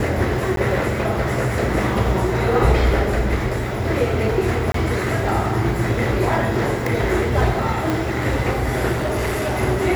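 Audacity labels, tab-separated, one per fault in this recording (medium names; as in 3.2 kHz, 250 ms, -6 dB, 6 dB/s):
0.560000	0.570000	dropout 12 ms
4.720000	4.740000	dropout 23 ms
7.900000	7.900000	pop
8.920000	9.620000	clipped -18.5 dBFS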